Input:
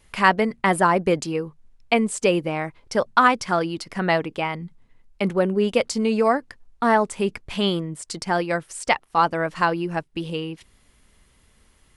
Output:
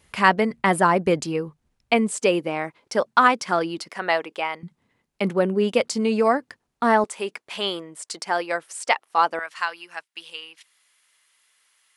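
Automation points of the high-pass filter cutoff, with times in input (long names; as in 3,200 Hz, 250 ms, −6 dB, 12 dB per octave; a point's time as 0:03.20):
60 Hz
from 0:02.11 220 Hz
from 0:03.89 490 Hz
from 0:04.63 140 Hz
from 0:07.04 470 Hz
from 0:09.39 1,400 Hz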